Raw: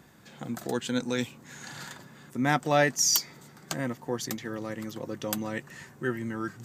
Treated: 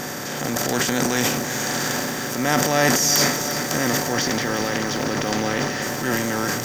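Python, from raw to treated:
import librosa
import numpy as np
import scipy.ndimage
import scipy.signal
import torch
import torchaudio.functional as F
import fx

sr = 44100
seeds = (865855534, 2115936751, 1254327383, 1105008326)

y = fx.bin_compress(x, sr, power=0.4)
y = fx.lowpass(y, sr, hz=5900.0, slope=24, at=(4.12, 5.82))
y = fx.transient(y, sr, attack_db=-6, sustain_db=10)
y = fx.echo_crushed(y, sr, ms=353, feedback_pct=80, bits=6, wet_db=-10.5)
y = F.gain(torch.from_numpy(y), 2.0).numpy()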